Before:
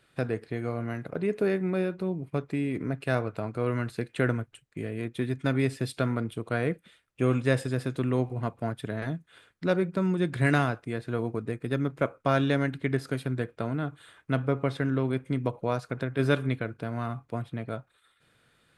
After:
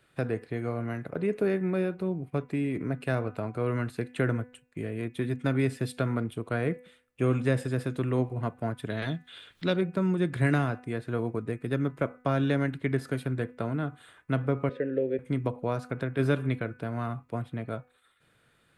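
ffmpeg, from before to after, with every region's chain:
-filter_complex "[0:a]asettb=1/sr,asplit=3[a][b][c];[a]atrim=end=8.904[d];[b]atrim=start=8.9:end=9.81,asetpts=PTS-STARTPTS,afade=t=in:d=0.004:c=qsin,afade=t=out:st=0.906:d=0.004:c=qsin,equalizer=f=3.5k:w=1.4:g=14.5,acompressor=mode=upward:threshold=-41dB:ratio=2.5:attack=3.2:release=140:knee=2.83:detection=peak[e];[c]atrim=start=9.806[f];[d][e]acrossfade=d=0.004:c1=hsin:c2=qsin[g];[g][f]acrossfade=d=0.004:c1=qsin:c2=hsin,asettb=1/sr,asplit=3[h][i][j];[h]atrim=end=14.694[k];[i]atrim=start=14.69:end=15.19,asetpts=PTS-STARTPTS,afade=t=in:d=0.004:c=qsin,afade=t=out:st=0.496:d=0.004:c=qsin,asplit=3[l][m][n];[l]bandpass=f=530:t=q:w=8,volume=0dB[o];[m]bandpass=f=1.84k:t=q:w=8,volume=-6dB[p];[n]bandpass=f=2.48k:t=q:w=8,volume=-9dB[q];[o][p][q]amix=inputs=3:normalize=0,lowshelf=f=540:t=q:w=1.5:g=7.5,acontrast=69[r];[j]atrim=start=15.186[s];[k][r]acrossfade=d=0.004:c1=hsin:c2=qsin[t];[t][s]acrossfade=d=0.004:c1=qsin:c2=hsin,equalizer=f=4.9k:w=1.1:g=-4,bandreject=f=248.9:t=h:w=4,bandreject=f=497.8:t=h:w=4,bandreject=f=746.7:t=h:w=4,bandreject=f=995.6:t=h:w=4,bandreject=f=1.2445k:t=h:w=4,bandreject=f=1.4934k:t=h:w=4,bandreject=f=1.7423k:t=h:w=4,bandreject=f=1.9912k:t=h:w=4,bandreject=f=2.2401k:t=h:w=4,bandreject=f=2.489k:t=h:w=4,bandreject=f=2.7379k:t=h:w=4,acrossover=split=390[u][v];[v]acompressor=threshold=-28dB:ratio=3[w];[u][w]amix=inputs=2:normalize=0"

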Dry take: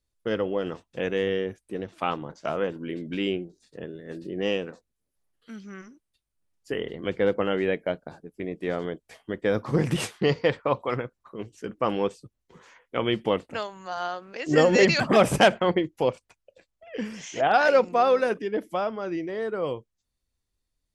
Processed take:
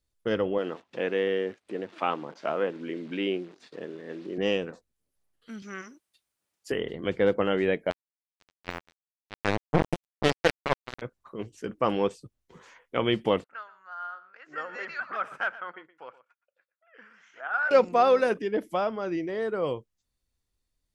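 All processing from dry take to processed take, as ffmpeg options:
-filter_complex "[0:a]asettb=1/sr,asplit=3[a][b][c];[a]atrim=end=0.584[d];[b]atrim=start=0.58:end=4.38,asetpts=PTS-STARTPTS,afade=t=in:d=0.004:c=qsin,afade=t=out:st=3.796:d=0.004:c=qsin,acompressor=mode=upward:threshold=-33dB:ratio=2.5:attack=3.2:release=140:knee=2.83:detection=peak,acrusher=bits=9:dc=4:mix=0:aa=0.000001,highpass=240,lowpass=3.3k[e];[c]atrim=start=4.376[f];[d][e]acrossfade=d=0.004:c1=hsin:c2=qsin[g];[g][f]acrossfade=d=0.004:c1=qsin:c2=hsin,asettb=1/sr,asplit=3[h][i][j];[h]atrim=end=5.624[k];[i]atrim=start=5.62:end=6.72,asetpts=PTS-STARTPTS,afade=t=in:d=0.004:c=qsin,afade=t=out:st=1.096:d=0.004:c=qsin,highpass=f=540:p=1,acontrast=78[l];[j]atrim=start=6.716[m];[k][l]acrossfade=d=0.004:c1=hsin:c2=qsin[n];[n][m]acrossfade=d=0.004:c1=qsin:c2=hsin,asettb=1/sr,asplit=3[o][p][q];[o]atrim=end=7.904[r];[p]atrim=start=7.9:end=11.02,asetpts=PTS-STARTPTS,afade=t=in:d=0.004:c=qsin,afade=t=out:st=3.116:d=0.004:c=qsin,highshelf=f=3.2k:g=-5.5,acrusher=bits=2:mix=0:aa=0.5[s];[q]atrim=start=11.016[t];[r][s]acrossfade=d=0.004:c1=hsin:c2=qsin[u];[u][t]acrossfade=d=0.004:c1=qsin:c2=hsin,asettb=1/sr,asplit=3[v][w][x];[v]atrim=end=13.444[y];[w]atrim=start=13.44:end=17.71,asetpts=PTS-STARTPTS,afade=t=in:d=0.004:c=qsin,afade=t=out:st=4.266:d=0.004:c=qsin,bandpass=f=1.4k:t=q:w=6,aecho=1:1:120:0.15,atrim=end_sample=188307[z];[x]atrim=start=17.706[aa];[y][z]acrossfade=d=0.004:c1=hsin:c2=qsin[ab];[ab][aa]acrossfade=d=0.004:c1=qsin:c2=hsin"

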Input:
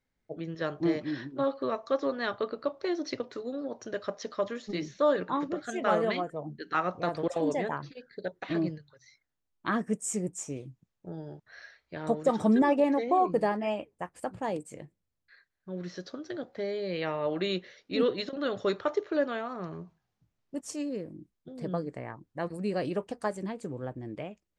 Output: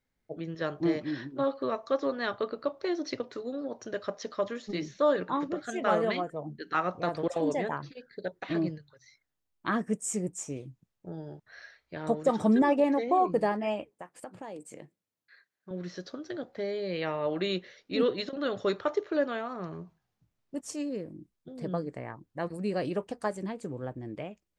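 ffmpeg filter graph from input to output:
-filter_complex "[0:a]asettb=1/sr,asplit=3[a][b][c];[a]atrim=end=13.904[d];[b]atrim=start=13.9:end=15.71,asetpts=PTS-STARTPTS,afade=t=in:d=0.004:c=qsin,afade=t=out:st=1.806:d=0.004:c=qsin,highpass=190,acompressor=threshold=-38dB:ratio=4:attack=3.2:release=140:knee=1:detection=peak[e];[c]atrim=start=15.706[f];[d][e]acrossfade=d=0.004:c1=hsin:c2=qsin[g];[g][f]acrossfade=d=0.004:c1=qsin:c2=hsin"

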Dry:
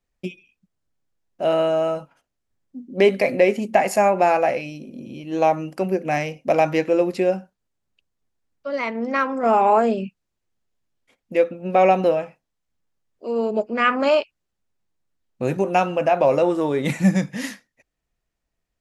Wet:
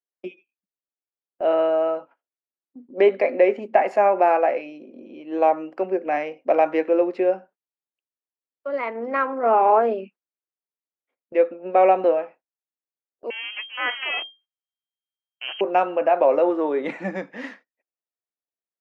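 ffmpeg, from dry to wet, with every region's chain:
-filter_complex "[0:a]asettb=1/sr,asplit=3[a][b][c];[a]atrim=end=13.304[d];[b]atrim=start=13.3:end=15.61,asetpts=PTS-STARTPTS,afade=t=in:d=0.004:c=qsin,afade=t=out:st=2.306:d=0.004:c=qsin,aeval=exprs='max(val(0),0)':c=same,lowpass=f=2.7k:t=q:w=0.5098,lowpass=f=2.7k:t=q:w=0.6013,lowpass=f=2.7k:t=q:w=0.9,lowpass=f=2.7k:t=q:w=2.563,afreqshift=-3200[e];[c]atrim=start=15.606[f];[d][e]acrossfade=d=0.004:c1=hsin:c2=qsin[g];[g][f]acrossfade=d=0.004:c1=qsin:c2=hsin,highpass=f=300:w=0.5412,highpass=f=300:w=1.3066,agate=range=-17dB:threshold=-46dB:ratio=16:detection=peak,lowpass=1.9k"

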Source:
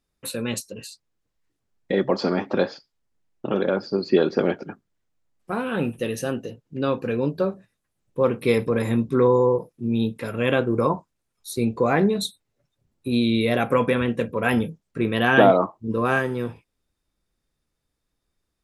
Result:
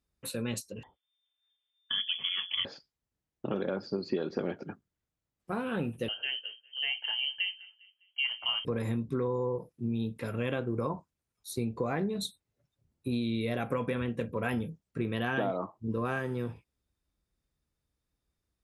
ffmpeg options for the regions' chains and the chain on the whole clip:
-filter_complex "[0:a]asettb=1/sr,asplit=3[a][b][c];[a]atrim=end=0.834[d];[b]atrim=start=0.83:end=2.65,asetpts=PTS-STARTPTS,afade=t=in:d=0.004:c=qsin,afade=t=out:st=1.816:d=0.004:c=qsin,bandreject=f=60:t=h:w=6,bandreject=f=120:t=h:w=6,bandreject=f=180:t=h:w=6,bandreject=f=240:t=h:w=6,bandreject=f=300:t=h:w=6,bandreject=f=360:t=h:w=6,bandreject=f=420:t=h:w=6,bandreject=f=480:t=h:w=6,bandreject=f=540:t=h:w=6,lowpass=f=3.1k:t=q:w=0.5098,lowpass=f=3.1k:t=q:w=0.6013,lowpass=f=3.1k:t=q:w=0.9,lowpass=f=3.1k:t=q:w=2.563,afreqshift=-3600[e];[c]atrim=start=2.646[f];[d][e]acrossfade=d=0.004:c1=hsin:c2=qsin[g];[g][f]acrossfade=d=0.004:c1=qsin:c2=hsin,asettb=1/sr,asplit=3[h][i][j];[h]atrim=end=6.084[k];[i]atrim=start=6.08:end=8.65,asetpts=PTS-STARTPTS,afade=t=in:d=0.004:c=qsin,afade=t=out:st=2.566:d=0.004:c=qsin,lowshelf=f=77:g=-10.5,asplit=2[l][m];[m]adelay=202,lowpass=f=2.4k:p=1,volume=-23dB,asplit=2[n][o];[o]adelay=202,lowpass=f=2.4k:p=1,volume=0.45,asplit=2[p][q];[q]adelay=202,lowpass=f=2.4k:p=1,volume=0.45[r];[l][n][p][r]amix=inputs=4:normalize=0,atrim=end_sample=113337,lowpass=f=2.8k:t=q:w=0.5098,lowpass=f=2.8k:t=q:w=0.6013,lowpass=f=2.8k:t=q:w=0.9,lowpass=f=2.8k:t=q:w=2.563,afreqshift=-3300[s];[j]atrim=start=8.646[t];[k][s]acrossfade=d=0.004:c1=hsin:c2=qsin[u];[u][t]acrossfade=d=0.004:c1=qsin:c2=hsin,highpass=48,lowshelf=f=110:g=10,acompressor=threshold=-21dB:ratio=5,volume=-7dB"

